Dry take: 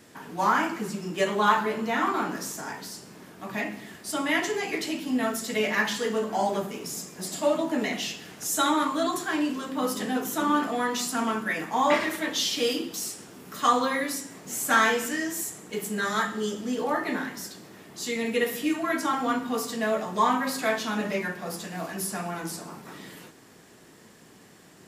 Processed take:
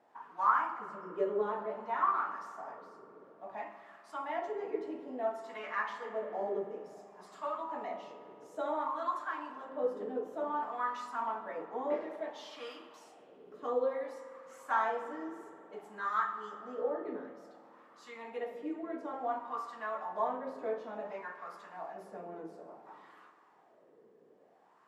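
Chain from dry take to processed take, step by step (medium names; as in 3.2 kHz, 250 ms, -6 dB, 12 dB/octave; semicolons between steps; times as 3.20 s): wah-wah 0.57 Hz 430–1200 Hz, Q 4.5; spring tank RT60 2.6 s, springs 49 ms, chirp 65 ms, DRR 10.5 dB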